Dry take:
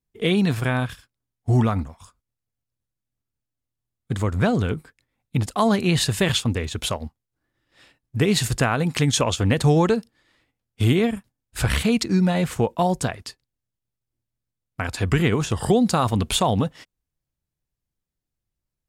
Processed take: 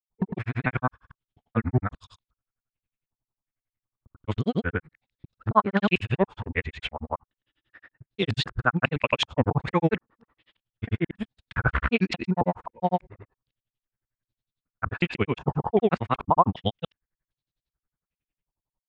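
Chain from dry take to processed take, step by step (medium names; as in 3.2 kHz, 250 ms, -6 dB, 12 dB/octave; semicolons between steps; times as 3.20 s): time reversed locally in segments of 154 ms; granulator 74 ms, grains 11 per s; step-sequenced low-pass 2.6 Hz 930–3900 Hz; trim -1 dB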